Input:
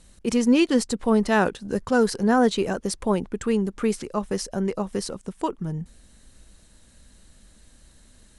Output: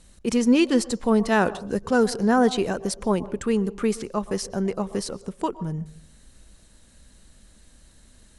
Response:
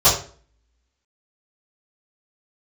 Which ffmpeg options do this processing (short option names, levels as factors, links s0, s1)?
-filter_complex "[0:a]asplit=2[s0][s1];[1:a]atrim=start_sample=2205,highshelf=f=3300:g=-10,adelay=109[s2];[s1][s2]afir=irnorm=-1:irlink=0,volume=0.0119[s3];[s0][s3]amix=inputs=2:normalize=0"